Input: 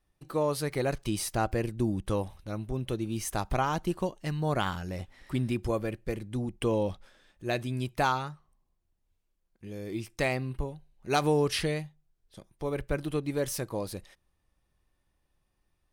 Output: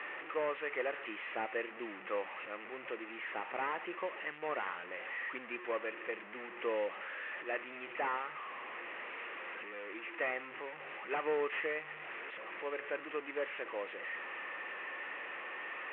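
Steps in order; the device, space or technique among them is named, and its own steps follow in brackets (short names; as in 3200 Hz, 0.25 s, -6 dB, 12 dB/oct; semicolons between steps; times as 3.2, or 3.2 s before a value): digital answering machine (BPF 370–3000 Hz; delta modulation 16 kbps, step -36.5 dBFS; speaker cabinet 390–3100 Hz, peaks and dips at 490 Hz +4 dB, 690 Hz -3 dB, 1200 Hz +5 dB, 1900 Hz +10 dB, 2600 Hz +7 dB); gain -5.5 dB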